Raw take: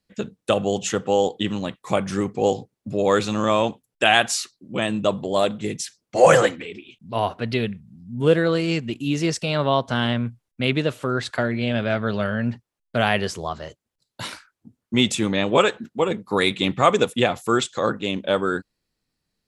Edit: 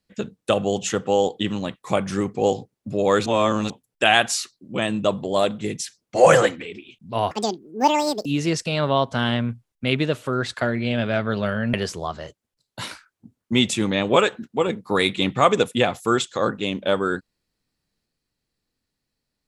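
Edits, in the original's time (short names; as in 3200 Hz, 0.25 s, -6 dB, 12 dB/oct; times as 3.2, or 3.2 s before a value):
3.26–3.7 reverse
7.31–9.02 speed 181%
12.5–13.15 cut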